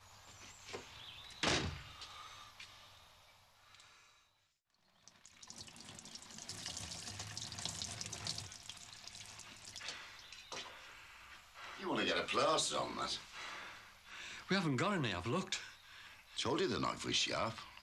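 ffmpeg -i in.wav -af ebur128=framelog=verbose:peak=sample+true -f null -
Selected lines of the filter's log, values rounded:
Integrated loudness:
  I:         -40.2 LUFS
  Threshold: -51.6 LUFS
Loudness range:
  LRA:        18.1 LU
  Threshold: -62.2 LUFS
  LRA low:   -56.2 LUFS
  LRA high:  -38.1 LUFS
Sample peak:
  Peak:      -22.5 dBFS
True peak:
  Peak:      -22.5 dBFS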